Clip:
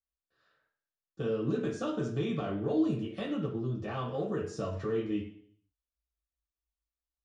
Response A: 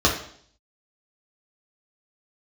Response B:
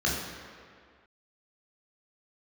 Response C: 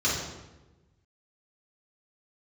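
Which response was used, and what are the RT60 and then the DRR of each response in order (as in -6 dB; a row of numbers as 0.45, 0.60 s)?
A; 0.60, 2.0, 1.1 s; -3.0, -4.0, -8.0 dB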